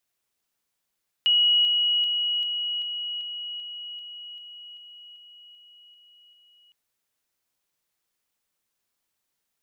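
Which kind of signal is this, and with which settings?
level ladder 2910 Hz -16.5 dBFS, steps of -3 dB, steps 14, 0.39 s 0.00 s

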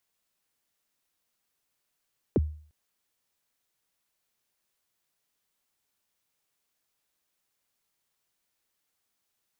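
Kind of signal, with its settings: kick drum length 0.35 s, from 510 Hz, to 76 Hz, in 30 ms, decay 0.47 s, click off, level -17 dB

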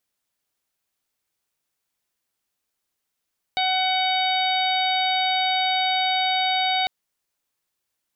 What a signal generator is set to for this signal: steady additive tone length 3.30 s, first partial 750 Hz, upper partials -11.5/-5/-9/-3.5/-13 dB, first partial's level -22 dB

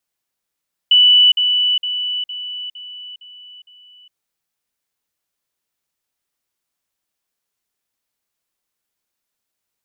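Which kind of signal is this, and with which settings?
level ladder 2970 Hz -7 dBFS, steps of -6 dB, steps 7, 0.41 s 0.05 s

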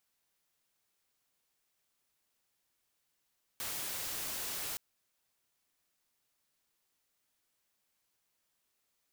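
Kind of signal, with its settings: noise white, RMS -39 dBFS 1.17 s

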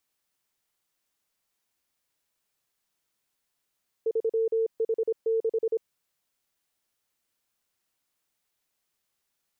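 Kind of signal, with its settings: Morse "3H6" 26 wpm 450 Hz -22 dBFS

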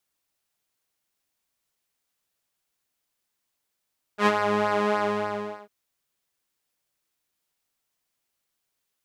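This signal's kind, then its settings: synth patch with pulse-width modulation G#3, interval -12 st, detune 23 cents, filter bandpass, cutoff 680 Hz, Q 0.85, filter envelope 1 oct, filter decay 0.30 s, attack 83 ms, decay 0.05 s, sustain -7.5 dB, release 0.74 s, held 0.76 s, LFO 3.4 Hz, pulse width 18%, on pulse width 12%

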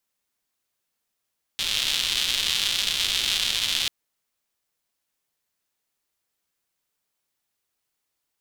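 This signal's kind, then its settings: rain from filtered ticks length 2.29 s, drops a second 280, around 3400 Hz, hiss -17.5 dB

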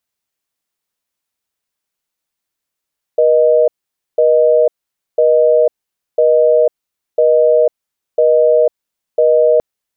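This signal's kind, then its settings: call progress tone busy tone, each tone -10 dBFS 6.42 s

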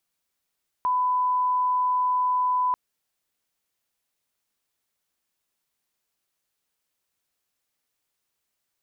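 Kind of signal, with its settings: line-up tone -20 dBFS 1.89 s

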